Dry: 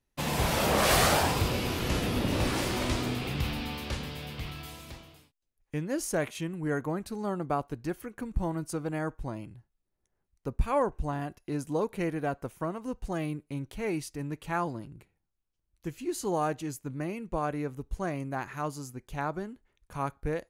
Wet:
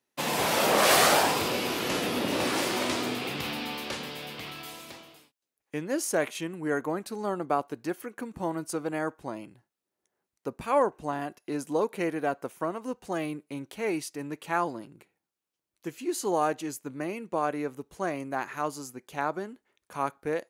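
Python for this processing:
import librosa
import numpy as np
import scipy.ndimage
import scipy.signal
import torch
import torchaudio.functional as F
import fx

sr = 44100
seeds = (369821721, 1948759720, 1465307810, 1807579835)

y = scipy.signal.sosfilt(scipy.signal.butter(2, 270.0, 'highpass', fs=sr, output='sos'), x)
y = y * librosa.db_to_amplitude(3.5)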